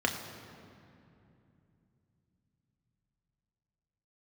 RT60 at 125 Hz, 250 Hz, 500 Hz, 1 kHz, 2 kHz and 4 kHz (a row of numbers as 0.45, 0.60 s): 5.4, 4.3, 2.9, 2.6, 2.3, 1.7 s